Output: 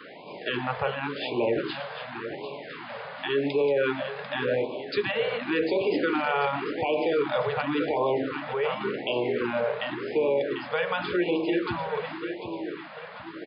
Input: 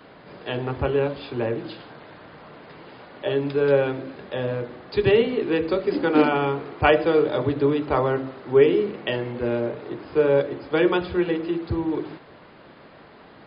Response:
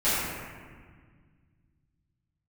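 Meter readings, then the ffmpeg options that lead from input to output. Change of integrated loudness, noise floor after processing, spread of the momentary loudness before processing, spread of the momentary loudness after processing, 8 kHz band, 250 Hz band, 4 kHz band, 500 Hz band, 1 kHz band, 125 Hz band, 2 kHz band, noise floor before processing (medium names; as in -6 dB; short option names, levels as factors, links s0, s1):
-5.0 dB, -41 dBFS, 12 LU, 11 LU, no reading, -5.5 dB, +0.5 dB, -5.0 dB, -2.0 dB, -9.5 dB, -0.5 dB, -48 dBFS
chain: -af "highpass=110,acompressor=threshold=0.1:ratio=6,lowpass=2500,aemphasis=mode=production:type=riaa,aecho=1:1:744|1488|2232|2976|3720:0.299|0.143|0.0688|0.033|0.0158,alimiter=limit=0.075:level=0:latency=1:release=11,afftfilt=real='re*(1-between(b*sr/1024,280*pow(1600/280,0.5+0.5*sin(2*PI*0.9*pts/sr))/1.41,280*pow(1600/280,0.5+0.5*sin(2*PI*0.9*pts/sr))*1.41))':imag='im*(1-between(b*sr/1024,280*pow(1600/280,0.5+0.5*sin(2*PI*0.9*pts/sr))/1.41,280*pow(1600/280,0.5+0.5*sin(2*PI*0.9*pts/sr))*1.41))':win_size=1024:overlap=0.75,volume=2"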